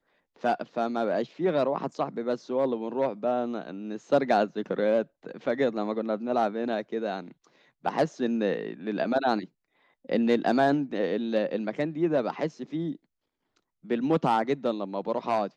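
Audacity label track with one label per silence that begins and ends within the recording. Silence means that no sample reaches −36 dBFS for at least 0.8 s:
12.950000	13.900000	silence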